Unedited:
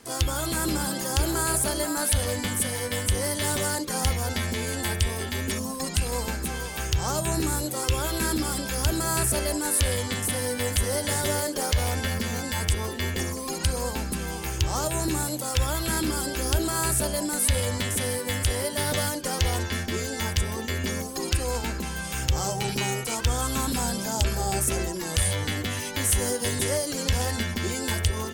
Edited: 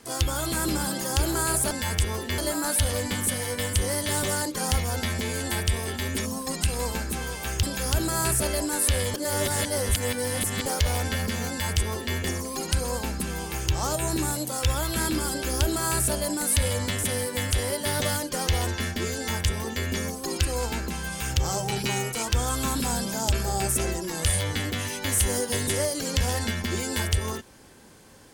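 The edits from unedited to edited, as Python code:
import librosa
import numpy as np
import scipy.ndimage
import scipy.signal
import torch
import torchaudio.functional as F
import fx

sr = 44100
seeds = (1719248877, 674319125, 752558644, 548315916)

y = fx.edit(x, sr, fx.cut(start_s=6.96, length_s=1.59),
    fx.reverse_span(start_s=10.06, length_s=1.52),
    fx.duplicate(start_s=12.41, length_s=0.67, to_s=1.71), tone=tone)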